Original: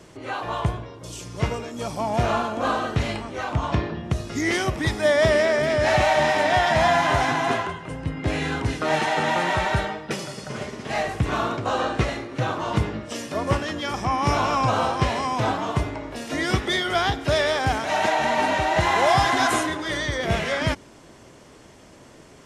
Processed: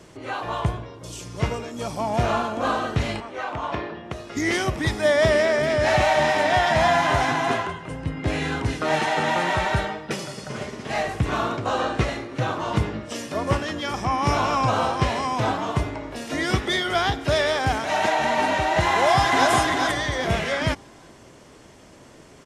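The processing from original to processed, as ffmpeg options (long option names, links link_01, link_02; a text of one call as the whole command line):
ffmpeg -i in.wav -filter_complex "[0:a]asettb=1/sr,asplit=3[link_01][link_02][link_03];[link_01]atrim=end=3.204[link_04];[link_02]atrim=start=3.2:end=4.37,asetpts=PTS-STARTPTS,afade=type=in:duration=0.004:curve=qsin,afade=type=out:start_time=1.166:duration=0.004:curve=qsin,bass=frequency=250:gain=-13,treble=frequency=4000:gain=-8[link_05];[link_03]atrim=start=4.366[link_06];[link_04][link_05]acrossfade=duration=0.004:curve1=hsin:curve2=qsin[link_07];[link_07][link_06]acrossfade=duration=0.004:curve1=qsin:curve2=hsin,asplit=2[link_08][link_09];[link_09]afade=type=in:start_time=18.91:duration=0.01,afade=type=out:start_time=19.51:duration=0.01,aecho=0:1:400|800|1200|1600:0.668344|0.200503|0.060151|0.0180453[link_10];[link_08][link_10]amix=inputs=2:normalize=0" out.wav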